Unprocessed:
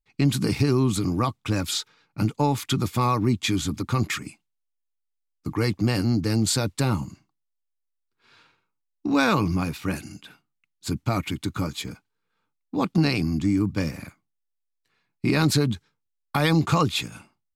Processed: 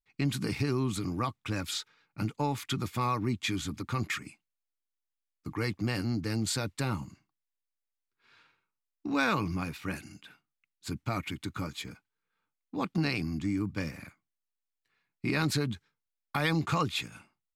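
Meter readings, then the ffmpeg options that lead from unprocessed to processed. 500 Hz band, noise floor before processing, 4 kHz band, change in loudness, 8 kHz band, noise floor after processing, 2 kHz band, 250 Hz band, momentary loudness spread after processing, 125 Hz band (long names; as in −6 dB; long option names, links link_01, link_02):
−8.5 dB, −79 dBFS, −7.0 dB, −8.0 dB, −8.5 dB, below −85 dBFS, −4.5 dB, −9.0 dB, 13 LU, −9.0 dB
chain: -af "equalizer=frequency=1900:width=0.95:gain=5.5,volume=-9dB"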